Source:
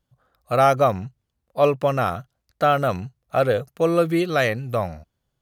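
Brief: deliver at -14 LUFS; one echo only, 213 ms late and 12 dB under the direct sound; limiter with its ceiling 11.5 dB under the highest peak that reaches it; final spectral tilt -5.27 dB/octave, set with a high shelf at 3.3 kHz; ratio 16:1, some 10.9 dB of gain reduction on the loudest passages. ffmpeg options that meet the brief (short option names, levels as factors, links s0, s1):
-af "highshelf=f=3300:g=-6,acompressor=threshold=0.0708:ratio=16,alimiter=level_in=1.12:limit=0.0631:level=0:latency=1,volume=0.891,aecho=1:1:213:0.251,volume=10.6"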